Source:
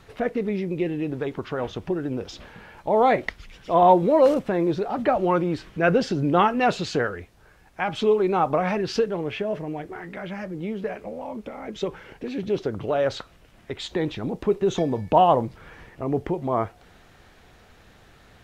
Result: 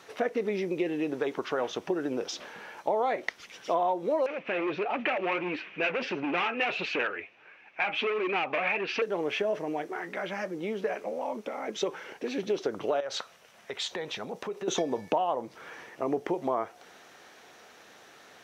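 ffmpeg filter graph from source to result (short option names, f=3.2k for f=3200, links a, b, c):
-filter_complex "[0:a]asettb=1/sr,asplit=3[a][b][c];[a]atrim=end=4.264[d];[b]atrim=start=4.26:end=9.02,asetpts=PTS-STARTPTS,afade=t=in:d=0.004:c=qsin,afade=t=out:st=4.756:d=0.004:c=qsin,flanger=delay=2.8:depth=7.6:regen=45:speed=1.5:shape=triangular,asoftclip=type=hard:threshold=-25.5dB,lowpass=f=2.5k:t=q:w=6.5[e];[c]atrim=start=9.016[f];[d][e]acrossfade=d=0.004:c1=hsin:c2=qsin[g];[g][f]acrossfade=d=0.004:c1=qsin:c2=hsin,asettb=1/sr,asplit=3[h][i][j];[h]atrim=end=13.004[k];[i]atrim=start=13:end=14.68,asetpts=PTS-STARTPTS,afade=t=in:d=0.004:c=qsin,afade=t=out:st=1.676:d=0.004:c=qsin,equalizer=f=310:w=3.1:g=-13,acompressor=threshold=-30dB:ratio=6:attack=3.2:release=140:knee=1:detection=peak[l];[j]atrim=start=14.676[m];[k][l]acrossfade=d=0.004:c1=hsin:c2=qsin[n];[n][m]acrossfade=d=0.004:c1=qsin:c2=hsin,highpass=350,equalizer=f=5.9k:t=o:w=0.21:g=7.5,acompressor=threshold=-26dB:ratio=12,volume=2dB"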